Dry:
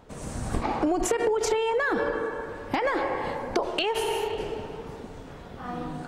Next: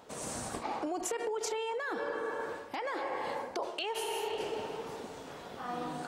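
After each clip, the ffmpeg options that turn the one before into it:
ffmpeg -i in.wav -af "highpass=frequency=740:poles=1,areverse,acompressor=threshold=-36dB:ratio=6,areverse,equalizer=frequency=1800:width_type=o:width=1.7:gain=-4.5,volume=4.5dB" out.wav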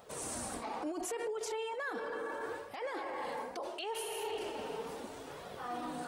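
ffmpeg -i in.wav -af "alimiter=level_in=6.5dB:limit=-24dB:level=0:latency=1:release=12,volume=-6.5dB,flanger=delay=1.5:depth=3.1:regen=-34:speed=0.73:shape=triangular,aexciter=amount=2.1:drive=3.3:freq=8900,volume=2.5dB" out.wav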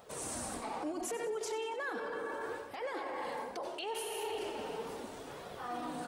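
ffmpeg -i in.wav -filter_complex "[0:a]asplit=6[link_01][link_02][link_03][link_04][link_05][link_06];[link_02]adelay=93,afreqshift=-36,volume=-13.5dB[link_07];[link_03]adelay=186,afreqshift=-72,volume=-18.9dB[link_08];[link_04]adelay=279,afreqshift=-108,volume=-24.2dB[link_09];[link_05]adelay=372,afreqshift=-144,volume=-29.6dB[link_10];[link_06]adelay=465,afreqshift=-180,volume=-34.9dB[link_11];[link_01][link_07][link_08][link_09][link_10][link_11]amix=inputs=6:normalize=0" out.wav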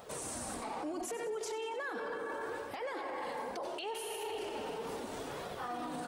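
ffmpeg -i in.wav -af "alimiter=level_in=12.5dB:limit=-24dB:level=0:latency=1:release=95,volume=-12.5dB,volume=5dB" out.wav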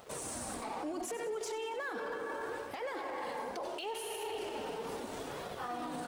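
ffmpeg -i in.wav -af "aeval=exprs='sgn(val(0))*max(abs(val(0))-0.00119,0)':channel_layout=same,volume=1dB" out.wav

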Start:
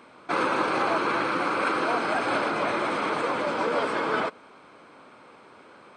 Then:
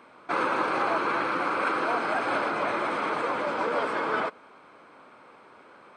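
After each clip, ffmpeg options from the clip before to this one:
ffmpeg -i in.wav -filter_complex "[0:a]lowshelf=frequency=470:gain=-5.5,acrossover=split=2300[link_01][link_02];[link_01]acontrast=53[link_03];[link_03][link_02]amix=inputs=2:normalize=0,volume=-5.5dB" out.wav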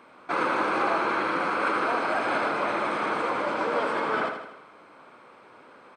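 ffmpeg -i in.wav -af "aecho=1:1:80|160|240|320|400|480:0.447|0.237|0.125|0.0665|0.0352|0.0187" out.wav

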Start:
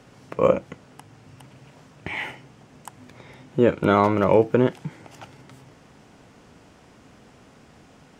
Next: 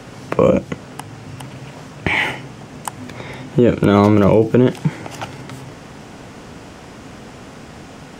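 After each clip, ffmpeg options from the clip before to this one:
ffmpeg -i in.wav -filter_complex "[0:a]acrossover=split=430|3000[link_01][link_02][link_03];[link_02]acompressor=threshold=-32dB:ratio=2.5[link_04];[link_01][link_04][link_03]amix=inputs=3:normalize=0,alimiter=level_in=15.5dB:limit=-1dB:release=50:level=0:latency=1,volume=-1dB" out.wav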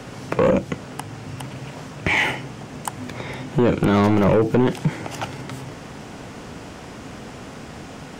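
ffmpeg -i in.wav -af "asoftclip=type=tanh:threshold=-11dB" out.wav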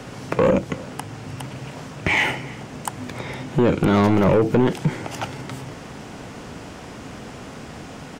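ffmpeg -i in.wav -af "aecho=1:1:309:0.0794" out.wav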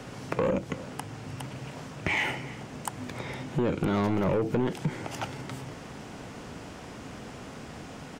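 ffmpeg -i in.wav -af "acompressor=threshold=-21dB:ratio=2,volume=-5.5dB" out.wav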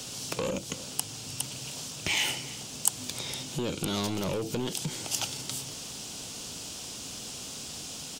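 ffmpeg -i in.wav -af "aexciter=amount=4.5:drive=9.4:freq=2900,volume=-5.5dB" out.wav

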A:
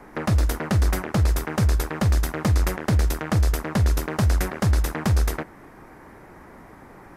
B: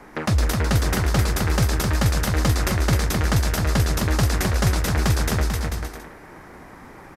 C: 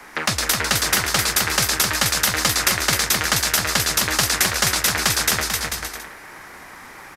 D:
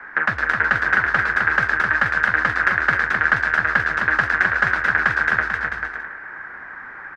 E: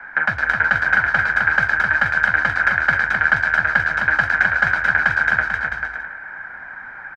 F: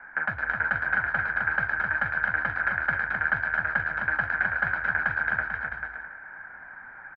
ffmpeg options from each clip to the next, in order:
ffmpeg -i in.wav -filter_complex "[0:a]equalizer=frequency=4500:width=0.5:gain=5.5,asplit=2[link_01][link_02];[link_02]aecho=0:1:260|442|569.4|658.6|721:0.631|0.398|0.251|0.158|0.1[link_03];[link_01][link_03]amix=inputs=2:normalize=0" out.wav
ffmpeg -i in.wav -filter_complex "[0:a]tiltshelf=frequency=890:gain=-9,acrossover=split=120|500|5000[link_01][link_02][link_03][link_04];[link_01]acompressor=threshold=-39dB:ratio=6[link_05];[link_05][link_02][link_03][link_04]amix=inputs=4:normalize=0,volume=2.5dB" out.wav
ffmpeg -i in.wav -af "lowpass=frequency=1600:width_type=q:width=6.7,volume=-4.5dB" out.wav
ffmpeg -i in.wav -af "bandreject=frequency=60:width_type=h:width=6,bandreject=frequency=120:width_type=h:width=6,aecho=1:1:1.3:0.53,volume=-1dB" out.wav
ffmpeg -i in.wav -af "lowpass=2100,volume=-8dB" out.wav

